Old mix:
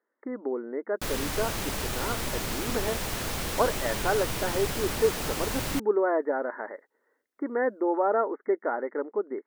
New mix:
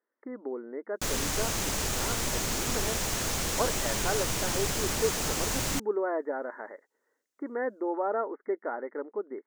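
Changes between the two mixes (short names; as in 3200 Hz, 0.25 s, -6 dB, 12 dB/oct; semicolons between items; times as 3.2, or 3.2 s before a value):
speech -5.0 dB; master: add bell 6700 Hz +8 dB 0.71 oct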